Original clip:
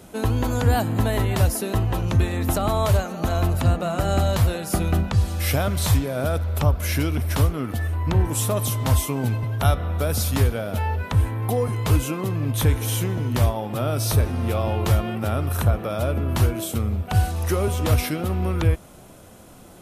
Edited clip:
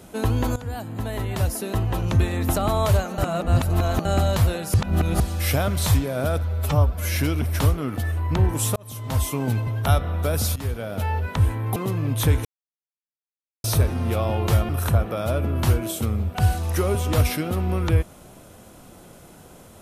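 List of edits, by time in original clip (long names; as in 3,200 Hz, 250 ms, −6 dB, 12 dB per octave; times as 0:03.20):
0:00.56–0:02.11: fade in linear, from −15.5 dB
0:03.18–0:04.05: reverse
0:04.74–0:05.20: reverse
0:06.43–0:06.91: time-stretch 1.5×
0:08.52–0:09.15: fade in
0:10.32–0:10.98: fade in equal-power, from −15.5 dB
0:11.52–0:12.14: remove
0:12.83–0:14.02: silence
0:15.07–0:15.42: remove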